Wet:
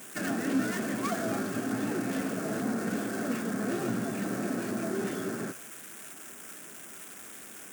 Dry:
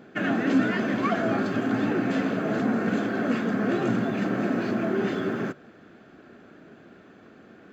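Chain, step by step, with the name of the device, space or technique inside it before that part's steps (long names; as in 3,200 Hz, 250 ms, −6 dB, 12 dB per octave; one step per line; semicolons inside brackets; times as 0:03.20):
budget class-D amplifier (gap after every zero crossing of 0.11 ms; spike at every zero crossing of −21.5 dBFS)
level −6.5 dB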